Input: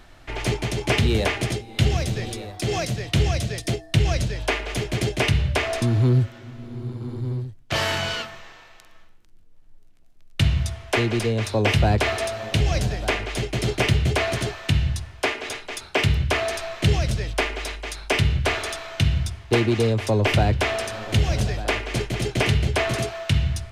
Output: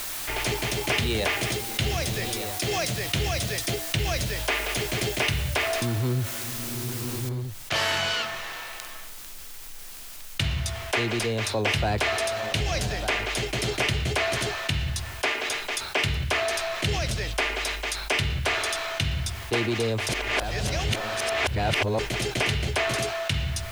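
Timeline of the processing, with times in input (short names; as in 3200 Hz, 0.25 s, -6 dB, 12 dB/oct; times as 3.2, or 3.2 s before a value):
7.29 noise floor step -42 dB -58 dB
20.09–21.99 reverse
whole clip: low shelf 470 Hz -9 dB; fast leveller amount 50%; gain -2.5 dB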